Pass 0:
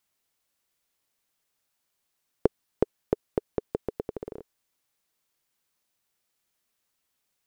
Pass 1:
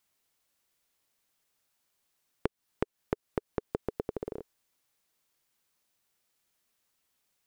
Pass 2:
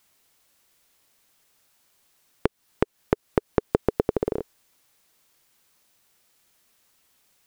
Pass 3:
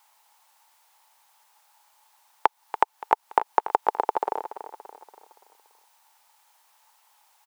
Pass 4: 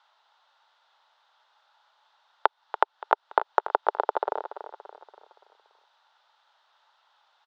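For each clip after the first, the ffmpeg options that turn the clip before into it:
-af "acompressor=threshold=-28dB:ratio=10,volume=1dB"
-af "alimiter=level_in=13dB:limit=-1dB:release=50:level=0:latency=1,volume=-1dB"
-af "highpass=f=870:t=q:w=8.6,aecho=1:1:286|572|858|1144|1430:0.237|0.111|0.0524|0.0246|0.0116,volume=1dB"
-af "highpass=360,equalizer=f=400:t=q:w=4:g=3,equalizer=f=600:t=q:w=4:g=6,equalizer=f=860:t=q:w=4:g=-3,equalizer=f=1.4k:t=q:w=4:g=8,equalizer=f=2.3k:t=q:w=4:g=-7,equalizer=f=3.6k:t=q:w=4:g=7,lowpass=f=4.3k:w=0.5412,lowpass=f=4.3k:w=1.3066,volume=-1.5dB"

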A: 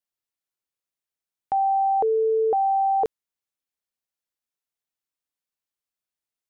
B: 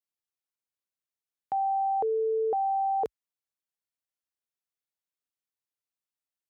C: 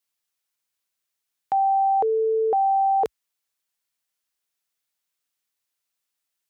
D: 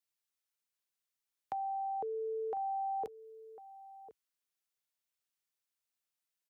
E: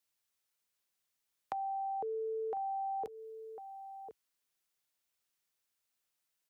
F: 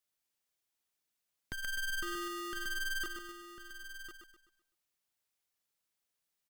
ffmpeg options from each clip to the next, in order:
-af "highpass=f=55:w=0.5412,highpass=f=55:w=1.3066,volume=-6dB"
-af "tiltshelf=f=970:g=-4,volume=8dB"
-filter_complex "[0:a]acrossover=split=330|800[a][b][c];[a]acompressor=threshold=-40dB:ratio=4[d];[b]acompressor=threshold=-34dB:ratio=4[e];[c]acompressor=threshold=-38dB:ratio=4[f];[d][e][f]amix=inputs=3:normalize=0,asplit=2[g][h];[h]adelay=1050,volume=-15dB,highshelf=f=4k:g=-23.6[i];[g][i]amix=inputs=2:normalize=0,volume=-8.5dB"
-af "acompressor=threshold=-41dB:ratio=5,volume=5dB"
-filter_complex "[0:a]asplit=2[a][b];[b]aecho=0:1:127|254|381|508|635:0.501|0.2|0.0802|0.0321|0.0128[c];[a][c]amix=inputs=2:normalize=0,aeval=exprs='val(0)*sgn(sin(2*PI*790*n/s))':c=same,volume=-3dB"

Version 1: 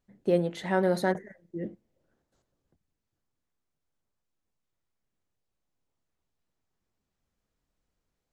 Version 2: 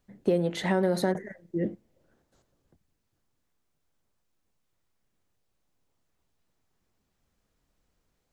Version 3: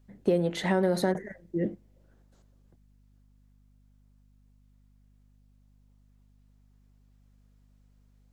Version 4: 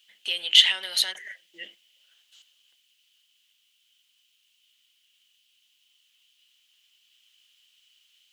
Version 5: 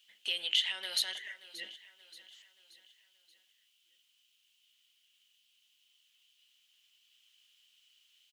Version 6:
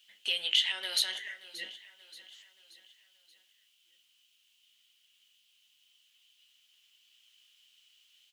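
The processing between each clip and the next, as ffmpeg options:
-filter_complex "[0:a]acrossover=split=530|5400[a][b][c];[b]alimiter=level_in=2dB:limit=-24dB:level=0:latency=1:release=75,volume=-2dB[d];[a][d][c]amix=inputs=3:normalize=0,acompressor=threshold=-27dB:ratio=6,volume=6.5dB"
-af "aeval=exprs='val(0)+0.001*(sin(2*PI*50*n/s)+sin(2*PI*2*50*n/s)/2+sin(2*PI*3*50*n/s)/3+sin(2*PI*4*50*n/s)/4+sin(2*PI*5*50*n/s)/5)':c=same"
-filter_complex "[0:a]asplit=2[a][b];[b]alimiter=limit=-22.5dB:level=0:latency=1:release=111,volume=0.5dB[c];[a][c]amix=inputs=2:normalize=0,highpass=f=3k:t=q:w=11,volume=5.5dB"
-af "acompressor=threshold=-23dB:ratio=4,aecho=1:1:579|1158|1737|2316:0.141|0.0664|0.0312|0.0147,volume=-4.5dB"
-af "flanger=delay=8.9:depth=7.7:regen=-54:speed=0.34:shape=sinusoidal,volume=7dB"

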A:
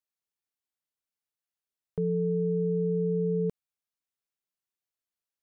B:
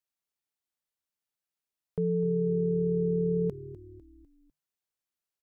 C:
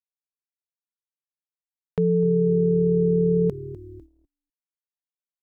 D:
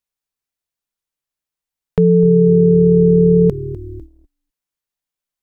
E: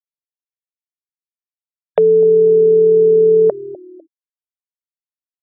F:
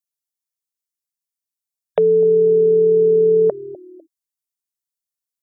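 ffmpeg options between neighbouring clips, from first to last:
-filter_complex "[0:a]asplit=5[a][b][c][d][e];[b]adelay=250,afreqshift=-38,volume=-16dB[f];[c]adelay=500,afreqshift=-76,volume=-22.4dB[g];[d]adelay=750,afreqshift=-114,volume=-28.8dB[h];[e]adelay=1000,afreqshift=-152,volume=-35.1dB[i];[a][f][g][h][i]amix=inputs=5:normalize=0"
-af "agate=range=-38dB:threshold=-52dB:ratio=16:detection=peak,volume=7.5dB"
-af "lowshelf=f=63:g=11,volume=8.5dB"
-af "highpass=f=600:t=q:w=5.5,afftfilt=real='re*gte(hypot(re,im),0.0141)':imag='im*gte(hypot(re,im),0.0141)':win_size=1024:overlap=0.75,volume=3dB"
-af "bass=f=250:g=3,treble=f=4k:g=13,volume=-3.5dB"

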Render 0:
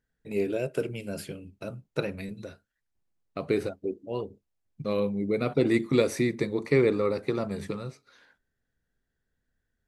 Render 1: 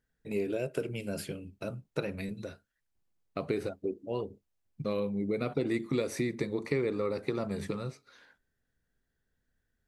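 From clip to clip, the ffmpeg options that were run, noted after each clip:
-af "acompressor=threshold=-29dB:ratio=3"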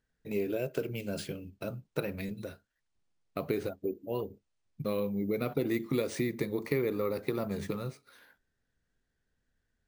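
-af "acrusher=samples=3:mix=1:aa=0.000001"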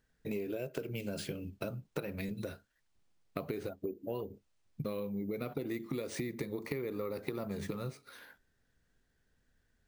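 -af "acompressor=threshold=-40dB:ratio=6,volume=5dB"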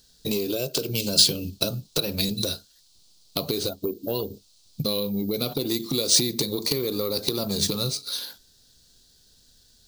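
-af "aeval=exprs='0.126*sin(PI/2*2.24*val(0)/0.126)':c=same,highshelf=f=2.9k:t=q:w=3:g=13.5"

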